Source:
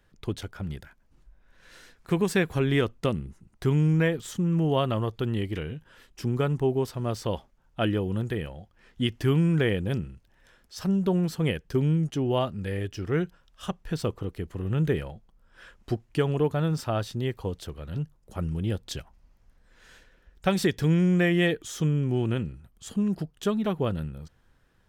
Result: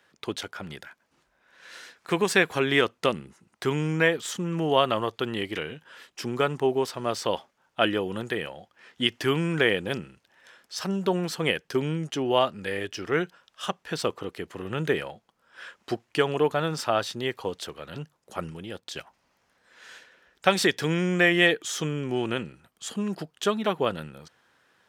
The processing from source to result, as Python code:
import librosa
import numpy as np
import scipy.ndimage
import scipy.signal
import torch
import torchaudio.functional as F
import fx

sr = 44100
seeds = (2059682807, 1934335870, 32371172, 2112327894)

y = fx.level_steps(x, sr, step_db=11, at=(18.5, 18.96))
y = fx.weighting(y, sr, curve='A')
y = F.gain(torch.from_numpy(y), 6.5).numpy()